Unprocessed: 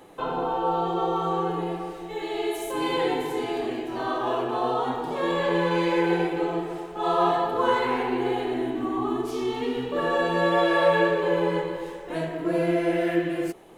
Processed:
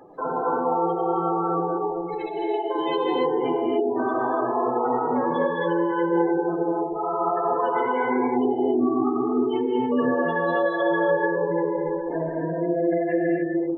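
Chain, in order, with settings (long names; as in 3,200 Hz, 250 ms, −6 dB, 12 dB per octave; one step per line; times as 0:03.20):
gate on every frequency bin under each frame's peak −15 dB strong
low-shelf EQ 220 Hz −4 dB
in parallel at −1 dB: compressor whose output falls as the input rises −29 dBFS, ratio −0.5
on the sum: reverb whose tail is shaped and stops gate 310 ms rising, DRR −1.5 dB
level −4.5 dB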